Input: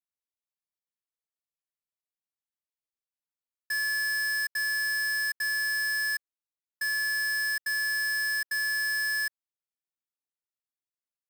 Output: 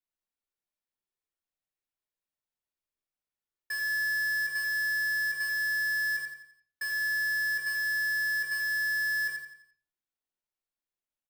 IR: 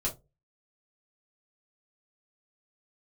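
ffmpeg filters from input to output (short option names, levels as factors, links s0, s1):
-filter_complex "[0:a]aecho=1:1:86|172|258|344|430:0.562|0.231|0.0945|0.0388|0.0159,asplit=2[s0][s1];[1:a]atrim=start_sample=2205,asetrate=25578,aresample=44100,lowpass=3800[s2];[s1][s2]afir=irnorm=-1:irlink=0,volume=0.473[s3];[s0][s3]amix=inputs=2:normalize=0,volume=0.562"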